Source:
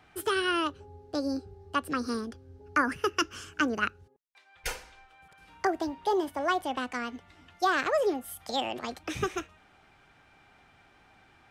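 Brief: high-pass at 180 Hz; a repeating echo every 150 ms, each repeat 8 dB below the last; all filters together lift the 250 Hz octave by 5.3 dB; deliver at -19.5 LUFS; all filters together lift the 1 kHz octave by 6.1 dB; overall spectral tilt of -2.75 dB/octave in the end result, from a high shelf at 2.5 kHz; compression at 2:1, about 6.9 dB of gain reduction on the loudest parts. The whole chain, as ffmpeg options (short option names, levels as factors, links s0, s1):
-af "highpass=180,equalizer=f=250:t=o:g=7,equalizer=f=1000:t=o:g=7,highshelf=f=2500:g=4,acompressor=threshold=0.0355:ratio=2,aecho=1:1:150|300|450|600|750:0.398|0.159|0.0637|0.0255|0.0102,volume=3.76"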